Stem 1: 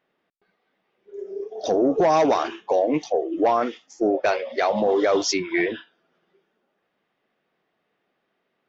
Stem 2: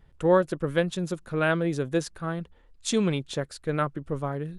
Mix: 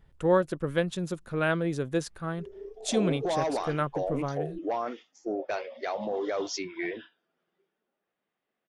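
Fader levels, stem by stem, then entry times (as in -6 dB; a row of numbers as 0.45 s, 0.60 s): -11.0 dB, -2.5 dB; 1.25 s, 0.00 s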